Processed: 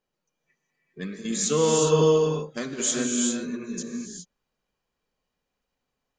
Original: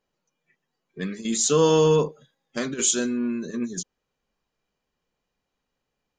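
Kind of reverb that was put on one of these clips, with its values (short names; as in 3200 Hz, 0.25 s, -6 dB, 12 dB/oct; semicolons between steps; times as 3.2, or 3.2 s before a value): non-linear reverb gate 0.43 s rising, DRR 0 dB; gain -4 dB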